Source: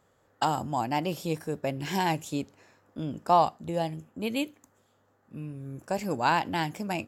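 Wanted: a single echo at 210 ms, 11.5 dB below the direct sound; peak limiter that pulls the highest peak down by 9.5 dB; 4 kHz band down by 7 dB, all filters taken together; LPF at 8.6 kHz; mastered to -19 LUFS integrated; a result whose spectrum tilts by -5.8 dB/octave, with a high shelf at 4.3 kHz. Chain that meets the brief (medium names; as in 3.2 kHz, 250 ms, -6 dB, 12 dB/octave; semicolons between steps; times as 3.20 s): low-pass 8.6 kHz; peaking EQ 4 kHz -8 dB; treble shelf 4.3 kHz -4 dB; peak limiter -20 dBFS; delay 210 ms -11.5 dB; trim +14 dB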